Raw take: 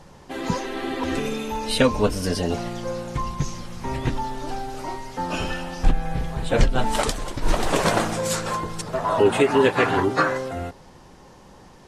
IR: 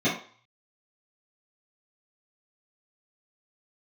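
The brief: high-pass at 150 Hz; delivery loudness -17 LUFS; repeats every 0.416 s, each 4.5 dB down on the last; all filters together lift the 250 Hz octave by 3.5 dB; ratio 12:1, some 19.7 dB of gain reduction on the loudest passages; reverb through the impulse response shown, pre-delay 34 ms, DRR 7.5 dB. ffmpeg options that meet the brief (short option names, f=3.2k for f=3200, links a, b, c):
-filter_complex "[0:a]highpass=150,equalizer=f=250:t=o:g=5,acompressor=threshold=-31dB:ratio=12,aecho=1:1:416|832|1248|1664|2080|2496|2912|3328|3744:0.596|0.357|0.214|0.129|0.0772|0.0463|0.0278|0.0167|0.01,asplit=2[a][b];[1:a]atrim=start_sample=2205,adelay=34[c];[b][c]afir=irnorm=-1:irlink=0,volume=-21.5dB[d];[a][d]amix=inputs=2:normalize=0,volume=15dB"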